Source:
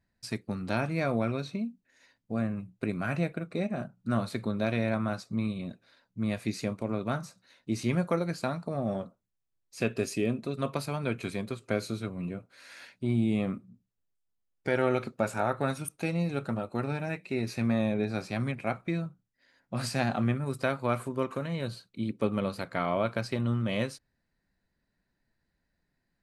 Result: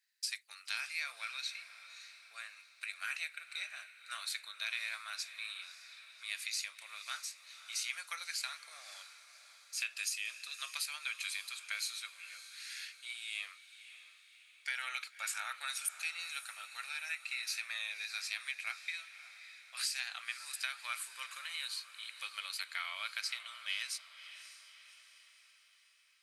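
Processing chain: Bessel high-pass 2900 Hz, order 4; compressor, threshold -42 dBFS, peak gain reduction 10 dB; diffused feedback echo 0.575 s, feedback 51%, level -13 dB; gain +8.5 dB

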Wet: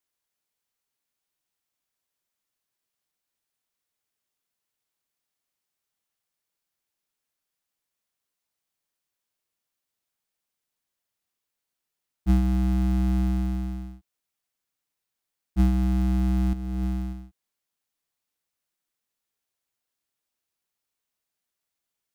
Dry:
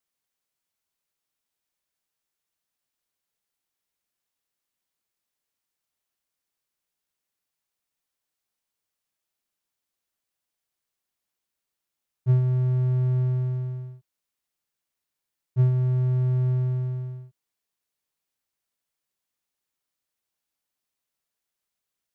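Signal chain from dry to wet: cycle switcher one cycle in 2, inverted; 16.53–17.13 negative-ratio compressor -27 dBFS, ratio -0.5

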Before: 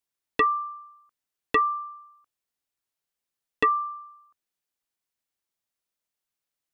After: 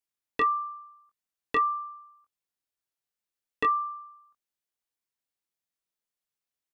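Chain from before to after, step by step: doubler 22 ms -5.5 dB; gain -5.5 dB

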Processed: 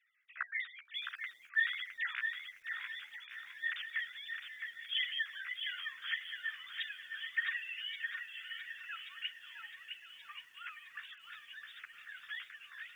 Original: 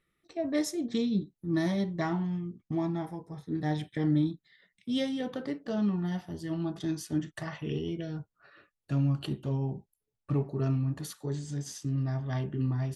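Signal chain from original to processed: sine-wave speech; steep high-pass 1500 Hz 48 dB/oct; flange 1.6 Hz, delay 8.6 ms, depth 8.5 ms, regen +3%; on a send: thin delay 1.13 s, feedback 62%, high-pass 2100 Hz, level -9 dB; on the sum: lo-fi delay 0.662 s, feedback 35%, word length 13-bit, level -6 dB; gain +13 dB

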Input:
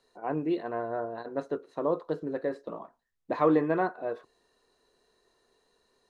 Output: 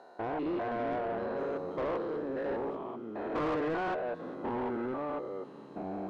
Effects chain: stepped spectrum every 0.2 s; echoes that change speed 0.22 s, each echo -4 st, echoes 3, each echo -6 dB; overdrive pedal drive 24 dB, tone 1900 Hz, clips at -16.5 dBFS; gain -8 dB

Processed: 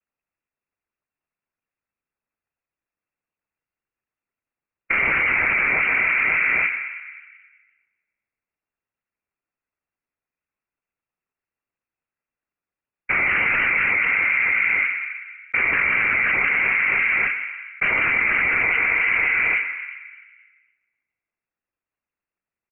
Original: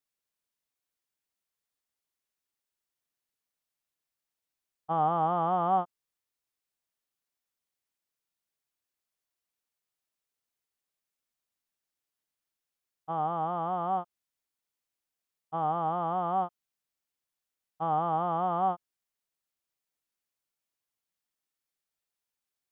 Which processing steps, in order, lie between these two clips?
formant sharpening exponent 1.5; gate with hold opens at -30 dBFS; sample leveller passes 5; flange 0.39 Hz, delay 1.7 ms, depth 5.7 ms, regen -61%; noise vocoder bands 8; feedback echo 0.274 s, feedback 37%, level -21 dB; plate-style reverb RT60 1.6 s, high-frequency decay 0.3×, pre-delay 0.105 s, DRR 14.5 dB; inverted band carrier 2900 Hz; fast leveller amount 100%

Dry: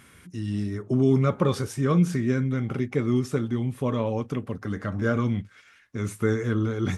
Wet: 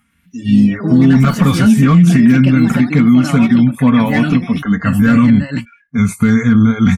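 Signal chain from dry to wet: band shelf 1400 Hz +8.5 dB 2.5 oct; one-sided clip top -12 dBFS; spectral noise reduction 25 dB; comb 4.3 ms, depth 52%; echoes that change speed 0.117 s, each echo +4 st, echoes 2, each echo -6 dB; EQ curve 230 Hz 0 dB, 380 Hz -19 dB, 7500 Hz -8 dB; maximiser +21 dB; ending taper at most 280 dB/s; gain -1 dB

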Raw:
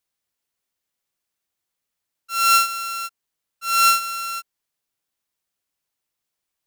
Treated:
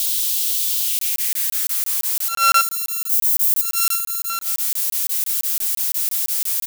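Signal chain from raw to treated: switching spikes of -18.5 dBFS; 2.61–4.3 differentiator; feedback echo 0.142 s, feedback 48%, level -20 dB; in parallel at -10 dB: hard clip -14 dBFS, distortion -13 dB; on the sum: high-pass sweep 3300 Hz -> 200 Hz, 0.78–3.48; companded quantiser 6-bit; crackling interface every 0.17 s, samples 1024, zero, from 0.99; attack slew limiter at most 180 dB/s; gain -1 dB

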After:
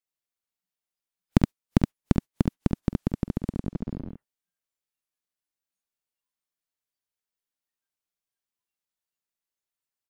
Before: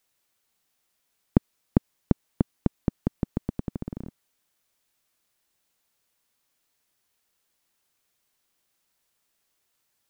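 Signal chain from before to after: tracing distortion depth 0.27 ms; early reflections 48 ms -15.5 dB, 70 ms -3.5 dB; spectral noise reduction 19 dB

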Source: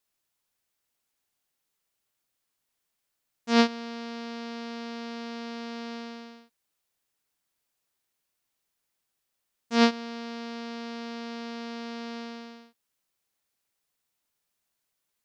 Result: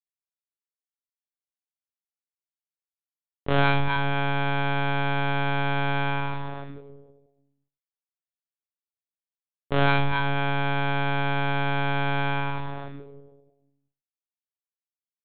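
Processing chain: G.711 law mismatch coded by A; HPF 77 Hz 12 dB/oct; expander -42 dBFS; low-pass opened by the level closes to 490 Hz, open at -33 dBFS; requantised 10-bit, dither none; early reflections 45 ms -7 dB, 57 ms -3 dB; reverb RT60 0.90 s, pre-delay 4 ms, DRR -1.5 dB; monotone LPC vocoder at 8 kHz 140 Hz; fast leveller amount 70%; gain -2.5 dB

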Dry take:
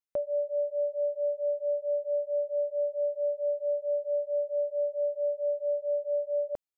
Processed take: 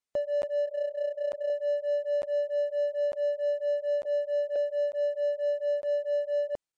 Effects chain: 0.65–1.5 AM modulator 30 Hz, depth 55%; 4.05–4.56 HPF 320 Hz 24 dB/oct; in parallel at -4 dB: hard clip -38.5 dBFS, distortion -6 dB; on the sum: crackling interface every 0.90 s, samples 512, zero, from 0.42; MP3 96 kbps 22050 Hz

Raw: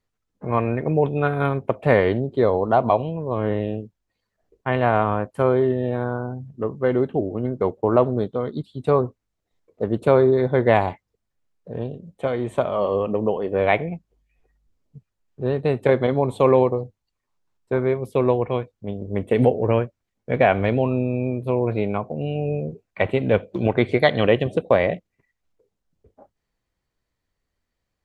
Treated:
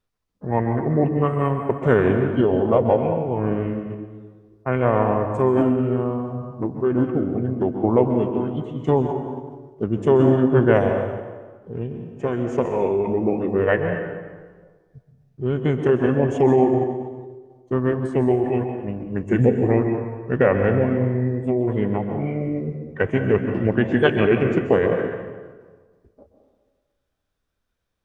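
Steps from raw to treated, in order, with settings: plate-style reverb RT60 1.5 s, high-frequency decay 0.75×, pre-delay 0.115 s, DRR 5 dB; formant shift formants -4 st

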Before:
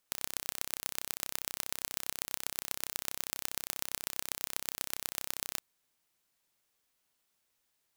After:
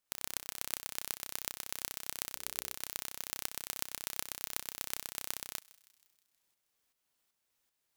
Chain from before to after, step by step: tremolo saw up 2.6 Hz, depth 55%; 2.32–2.74 notches 60/120/180/240/300/360/420/480/540 Hz; thinning echo 0.159 s, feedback 59%, high-pass 1000 Hz, level -21 dB

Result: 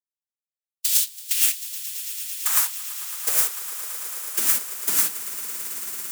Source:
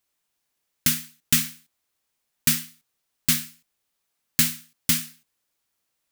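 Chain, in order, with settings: notches 50/100/150 Hz; spectral gate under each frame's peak -15 dB weak; EQ curve 1200 Hz 0 dB, 3900 Hz -8 dB, 7500 Hz +5 dB; sample leveller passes 5; in parallel at -2.5 dB: limiter -20 dBFS, peak gain reduction 12 dB; on the sum: negative-ratio compressor -14 dBFS, ratio -0.5; high-pass sweep 3500 Hz -> 210 Hz, 1.16–4.26; swelling echo 0.111 s, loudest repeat 8, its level -17 dB; gain -4.5 dB

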